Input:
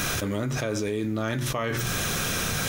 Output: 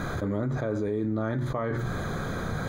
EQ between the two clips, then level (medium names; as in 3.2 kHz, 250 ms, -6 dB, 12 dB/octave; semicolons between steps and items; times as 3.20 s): boxcar filter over 16 samples; 0.0 dB